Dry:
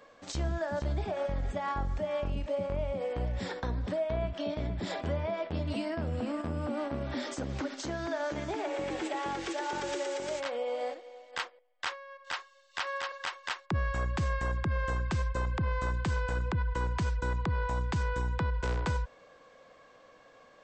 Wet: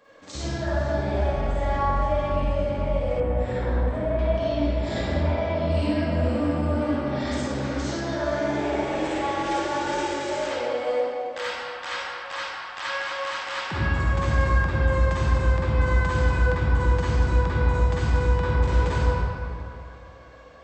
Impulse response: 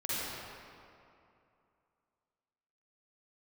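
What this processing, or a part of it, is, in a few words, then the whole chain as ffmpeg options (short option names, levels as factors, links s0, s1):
stairwell: -filter_complex "[1:a]atrim=start_sample=2205[s0];[0:a][s0]afir=irnorm=-1:irlink=0,asettb=1/sr,asplit=3[s1][s2][s3];[s1]atrim=end=3.204[s4];[s2]atrim=start=3.2:end=4.19,asetpts=PTS-STARTPTS,afade=t=in:d=0.004:c=qsin,afade=t=out:st=0.986:d=0.004:c=qsin,equalizer=f=5000:t=o:w=1.3:g=-14.5[s5];[s3]atrim=start=4.186[s6];[s4][s5]acrossfade=d=0.004:c1=hsin:c2=qsin[s7];[s7][s6]acrossfade=d=0.004:c1=qsin:c2=hsin,volume=1.19"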